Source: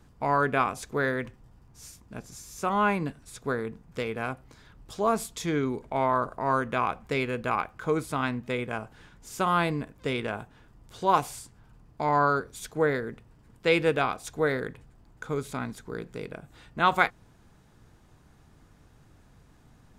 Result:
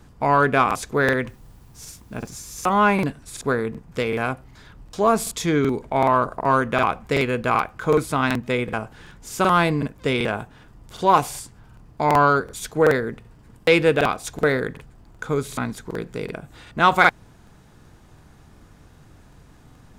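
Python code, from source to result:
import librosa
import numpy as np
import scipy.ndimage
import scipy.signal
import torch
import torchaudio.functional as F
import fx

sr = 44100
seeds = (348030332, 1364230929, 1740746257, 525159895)

p1 = fx.dmg_noise_colour(x, sr, seeds[0], colour='white', level_db=-71.0, at=(1.27, 2.85), fade=0.02)
p2 = 10.0 ** (-18.0 / 20.0) * np.tanh(p1 / 10.0 ** (-18.0 / 20.0))
p3 = p1 + (p2 * librosa.db_to_amplitude(-4.0))
p4 = fx.buffer_crackle(p3, sr, first_s=0.66, period_s=0.38, block=2048, kind='repeat')
y = p4 * librosa.db_to_amplitude(3.5)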